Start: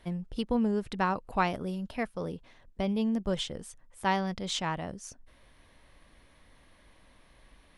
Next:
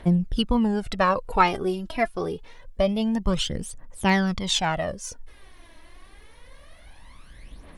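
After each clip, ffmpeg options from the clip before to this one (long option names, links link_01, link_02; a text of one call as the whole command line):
ffmpeg -i in.wav -af "aphaser=in_gain=1:out_gain=1:delay=3.1:decay=0.66:speed=0.26:type=triangular,volume=6.5dB" out.wav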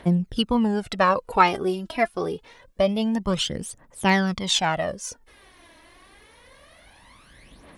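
ffmpeg -i in.wav -af "highpass=frequency=150:poles=1,volume=2dB" out.wav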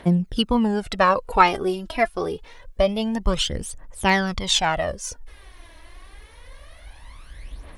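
ffmpeg -i in.wav -af "asubboost=boost=9:cutoff=60,volume=2dB" out.wav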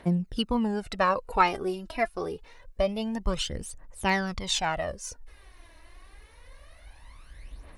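ffmpeg -i in.wav -af "bandreject=frequency=3300:width=11,volume=-6.5dB" out.wav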